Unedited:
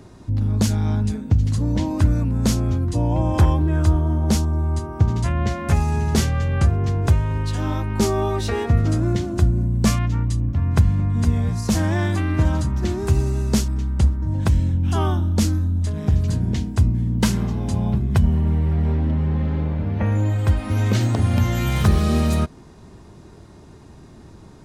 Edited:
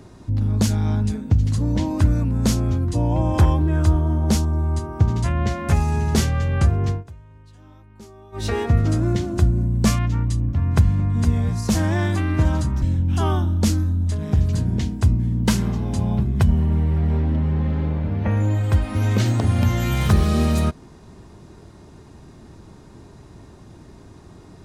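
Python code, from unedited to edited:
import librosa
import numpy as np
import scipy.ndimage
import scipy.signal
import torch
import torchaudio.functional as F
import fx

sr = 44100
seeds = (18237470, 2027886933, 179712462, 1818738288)

y = fx.edit(x, sr, fx.fade_down_up(start_s=6.9, length_s=1.56, db=-24.0, fade_s=0.14),
    fx.cut(start_s=12.82, length_s=1.75), tone=tone)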